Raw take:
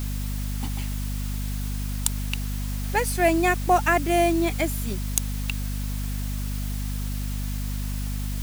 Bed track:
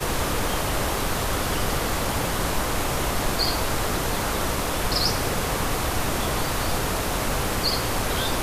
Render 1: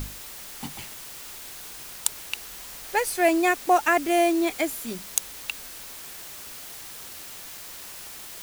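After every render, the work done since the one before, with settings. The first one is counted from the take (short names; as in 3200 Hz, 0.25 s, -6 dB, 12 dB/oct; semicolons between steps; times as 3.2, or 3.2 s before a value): notches 50/100/150/200/250 Hz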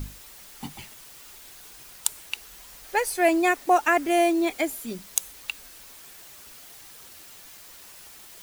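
denoiser 7 dB, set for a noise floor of -41 dBFS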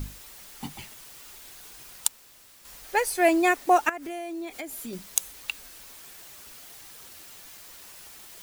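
2.08–2.65 room tone; 3.89–4.93 compressor, threshold -33 dBFS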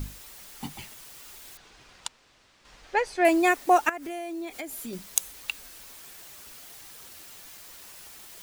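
1.57–3.25 air absorption 130 m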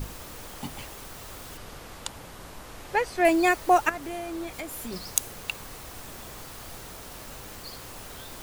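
add bed track -19 dB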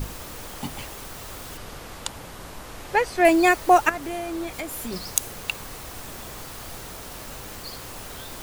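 gain +4 dB; limiter -2 dBFS, peak gain reduction 2 dB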